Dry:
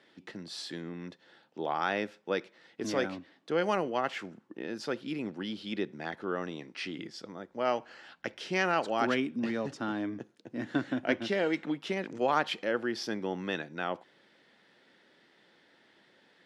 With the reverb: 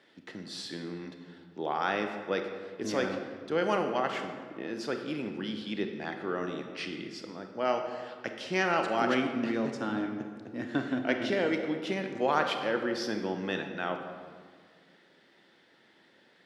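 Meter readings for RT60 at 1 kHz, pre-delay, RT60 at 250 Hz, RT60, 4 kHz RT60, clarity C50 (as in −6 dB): 1.7 s, 26 ms, 2.3 s, 1.9 s, 1.1 s, 6.5 dB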